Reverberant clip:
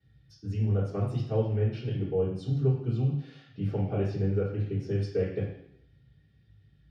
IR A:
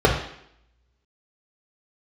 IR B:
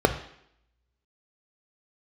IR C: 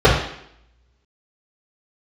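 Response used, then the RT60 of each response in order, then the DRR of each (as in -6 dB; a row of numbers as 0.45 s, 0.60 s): C; 0.70 s, 0.70 s, 0.70 s; -2.0 dB, 6.5 dB, -9.0 dB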